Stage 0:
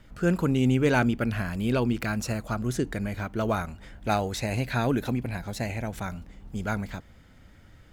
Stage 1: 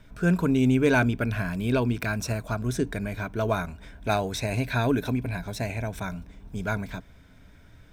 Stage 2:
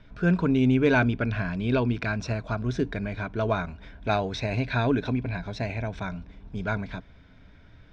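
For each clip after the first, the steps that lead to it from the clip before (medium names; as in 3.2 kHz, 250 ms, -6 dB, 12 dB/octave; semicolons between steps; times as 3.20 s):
rippled EQ curve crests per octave 1.6, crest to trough 7 dB
low-pass 4.9 kHz 24 dB/octave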